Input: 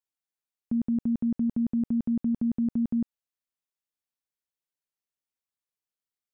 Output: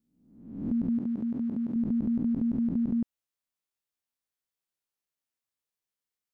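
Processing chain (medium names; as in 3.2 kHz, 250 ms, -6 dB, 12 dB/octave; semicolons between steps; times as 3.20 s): reverse spectral sustain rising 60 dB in 0.79 s; 0.98–1.76 s: high-pass 240 Hz 6 dB/octave; trim -1.5 dB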